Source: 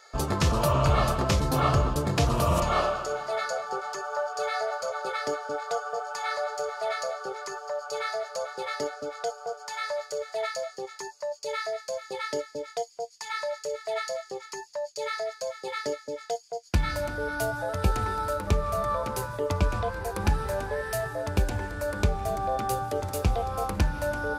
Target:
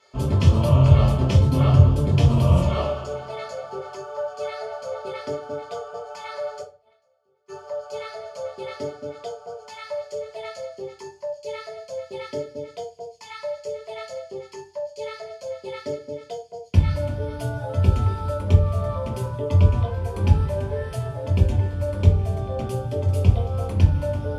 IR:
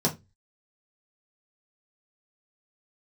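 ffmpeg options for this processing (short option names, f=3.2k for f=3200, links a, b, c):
-filter_complex "[0:a]asplit=3[a][b][c];[a]afade=t=out:st=6.6:d=0.02[d];[b]agate=range=-34dB:threshold=-24dB:ratio=16:detection=peak,afade=t=in:st=6.6:d=0.02,afade=t=out:st=7.48:d=0.02[e];[c]afade=t=in:st=7.48:d=0.02[f];[d][e][f]amix=inputs=3:normalize=0[g];[1:a]atrim=start_sample=2205,asetrate=25137,aresample=44100[h];[g][h]afir=irnorm=-1:irlink=0,volume=-15.5dB"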